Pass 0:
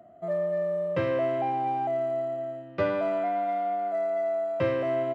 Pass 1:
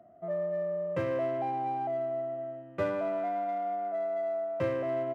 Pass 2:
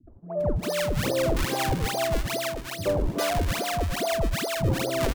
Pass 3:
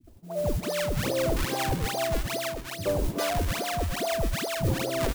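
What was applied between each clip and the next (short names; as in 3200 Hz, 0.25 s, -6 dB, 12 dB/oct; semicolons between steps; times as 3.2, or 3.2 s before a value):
Wiener smoothing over 9 samples; gain -4 dB
decimation with a swept rate 40×, swing 160% 2.4 Hz; three bands offset in time lows, mids, highs 70/400 ms, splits 210/900 Hz; gain +7.5 dB
modulation noise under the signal 18 dB; gain -2 dB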